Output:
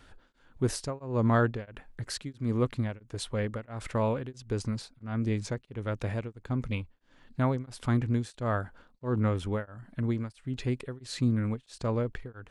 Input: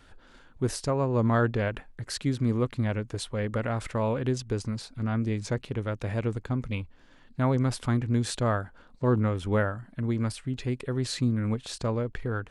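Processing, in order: beating tremolo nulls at 1.5 Hz

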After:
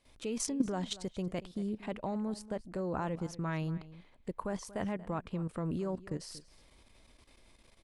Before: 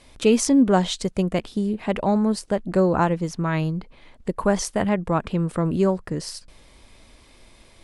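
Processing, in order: level quantiser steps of 13 dB; outdoor echo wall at 40 m, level -17 dB; gain -8.5 dB

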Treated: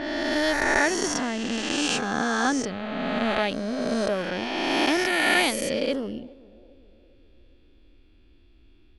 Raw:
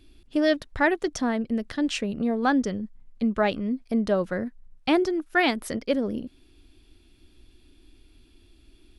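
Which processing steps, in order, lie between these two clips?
spectral swells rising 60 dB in 2.76 s; high shelf 3300 Hz +9 dB; low-pass opened by the level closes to 2100 Hz, open at -14 dBFS; on a send: narrowing echo 0.405 s, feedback 52%, band-pass 370 Hz, level -21 dB; on the sum: gain -5.5 dB

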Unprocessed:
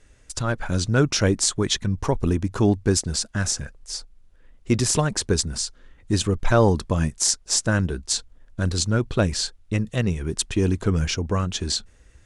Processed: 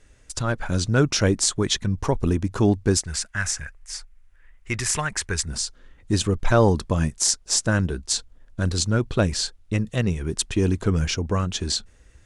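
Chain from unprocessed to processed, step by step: 3.02–5.48 graphic EQ 125/250/500/2000/4000 Hz -5/-11/-8/+9/-6 dB

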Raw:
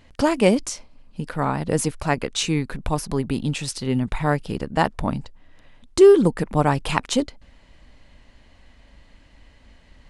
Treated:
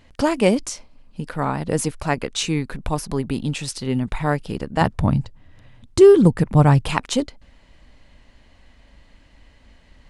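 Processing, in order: 4.81–6.89 bell 110 Hz +14 dB 1.3 oct

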